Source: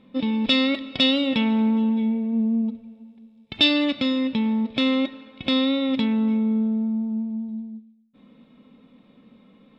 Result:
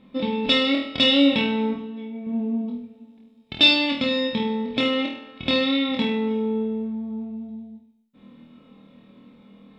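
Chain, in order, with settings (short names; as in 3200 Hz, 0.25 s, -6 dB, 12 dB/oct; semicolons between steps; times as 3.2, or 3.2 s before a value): 1.66–2.27 level quantiser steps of 10 dB; on a send: flutter echo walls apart 4.3 m, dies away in 0.52 s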